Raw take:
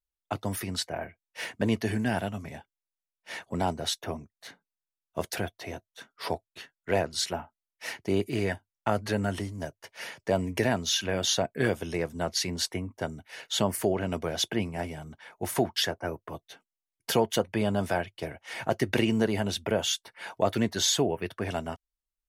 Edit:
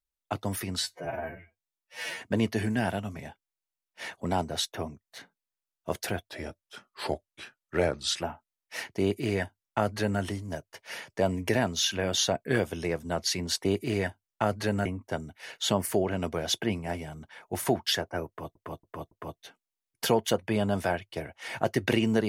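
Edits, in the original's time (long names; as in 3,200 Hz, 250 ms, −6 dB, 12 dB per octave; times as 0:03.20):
0:00.79–0:01.50: time-stretch 2×
0:05.58–0:07.32: play speed 90%
0:08.11–0:09.31: duplicate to 0:12.75
0:16.17–0:16.45: repeat, 4 plays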